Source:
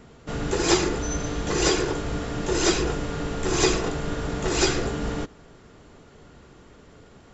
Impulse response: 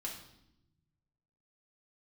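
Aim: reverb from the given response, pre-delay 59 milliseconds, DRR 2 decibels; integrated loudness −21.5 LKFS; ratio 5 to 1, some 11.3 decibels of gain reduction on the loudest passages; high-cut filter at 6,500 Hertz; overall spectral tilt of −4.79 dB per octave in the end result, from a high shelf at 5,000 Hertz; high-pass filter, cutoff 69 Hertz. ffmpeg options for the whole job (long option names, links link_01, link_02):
-filter_complex "[0:a]highpass=69,lowpass=6500,highshelf=frequency=5000:gain=-4,acompressor=threshold=-29dB:ratio=5,asplit=2[link_01][link_02];[1:a]atrim=start_sample=2205,adelay=59[link_03];[link_02][link_03]afir=irnorm=-1:irlink=0,volume=-1.5dB[link_04];[link_01][link_04]amix=inputs=2:normalize=0,volume=10dB"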